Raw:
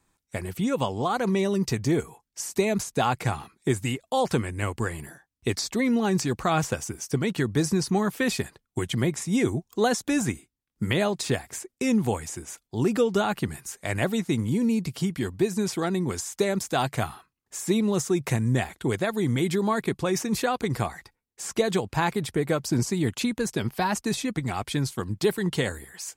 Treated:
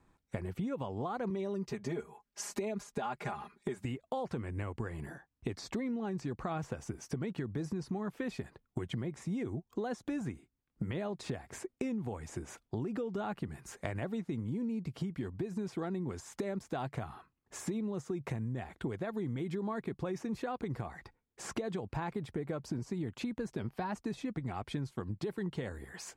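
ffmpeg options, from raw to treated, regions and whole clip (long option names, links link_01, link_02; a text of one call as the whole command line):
ffmpeg -i in.wav -filter_complex "[0:a]asettb=1/sr,asplit=3[link_01][link_02][link_03];[link_01]atrim=end=1.304[link_04];[link_02]atrim=start=1.3:end=3.85,asetpts=PTS-STARTPTS,afade=type=in:duration=0.004:curve=qsin,afade=type=out:start_time=2.546:duration=0.004:curve=qsin,lowshelf=frequency=300:gain=-9.5,aecho=1:1:4.9:0.97,atrim=end_sample=112455[link_05];[link_03]atrim=start=3.846[link_06];[link_04][link_05]acrossfade=duration=0.004:curve1=hsin:curve2=qsin[link_07];[link_07][link_06]acrossfade=duration=0.004:curve1=qsin:curve2=hsin,lowpass=frequency=1200:poles=1,alimiter=limit=-18dB:level=0:latency=1:release=76,acompressor=threshold=-39dB:ratio=6,volume=4dB" out.wav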